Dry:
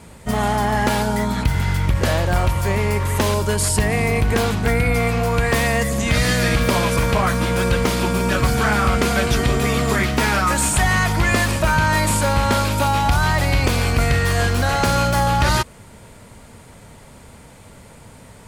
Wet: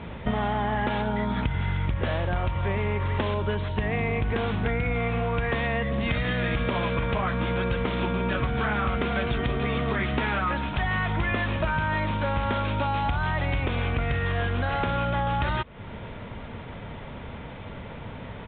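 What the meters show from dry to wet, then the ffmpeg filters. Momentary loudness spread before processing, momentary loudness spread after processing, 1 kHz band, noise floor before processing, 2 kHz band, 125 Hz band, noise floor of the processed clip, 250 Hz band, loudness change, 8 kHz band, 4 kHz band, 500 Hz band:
3 LU, 13 LU, −8.0 dB, −44 dBFS, −8.0 dB, −8.0 dB, −39 dBFS, −7.5 dB, −8.5 dB, below −40 dB, −11.0 dB, −7.5 dB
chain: -af "acompressor=threshold=-29dB:ratio=6,aresample=8000,aresample=44100,volume=5dB"

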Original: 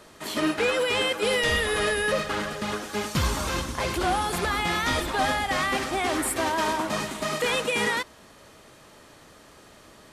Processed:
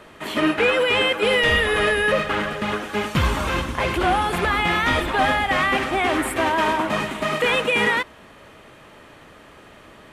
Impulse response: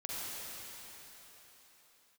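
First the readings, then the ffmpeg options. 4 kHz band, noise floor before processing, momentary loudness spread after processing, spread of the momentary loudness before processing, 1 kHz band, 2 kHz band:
+4.0 dB, −52 dBFS, 6 LU, 6 LU, +5.5 dB, +6.5 dB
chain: -af "highshelf=frequency=3700:width_type=q:width=1.5:gain=-8,volume=5dB"

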